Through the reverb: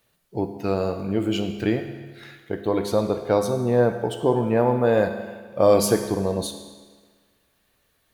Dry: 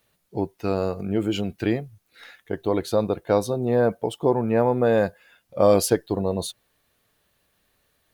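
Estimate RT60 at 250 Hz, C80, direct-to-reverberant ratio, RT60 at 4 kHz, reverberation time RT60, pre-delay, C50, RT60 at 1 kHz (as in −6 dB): 1.5 s, 9.5 dB, 6.0 dB, 1.4 s, 1.5 s, 14 ms, 8.0 dB, 1.5 s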